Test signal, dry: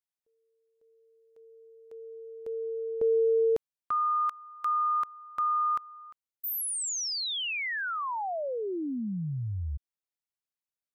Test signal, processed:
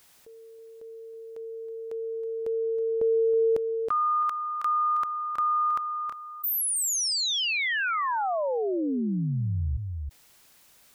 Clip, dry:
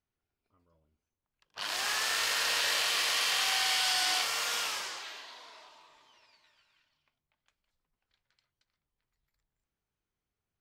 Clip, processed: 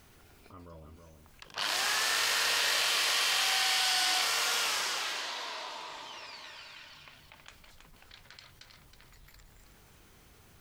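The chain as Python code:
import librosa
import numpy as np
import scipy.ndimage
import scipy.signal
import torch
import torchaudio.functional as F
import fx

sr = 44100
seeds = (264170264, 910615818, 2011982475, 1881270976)

p1 = x + fx.echo_single(x, sr, ms=321, db=-11.5, dry=0)
y = fx.env_flatten(p1, sr, amount_pct=50)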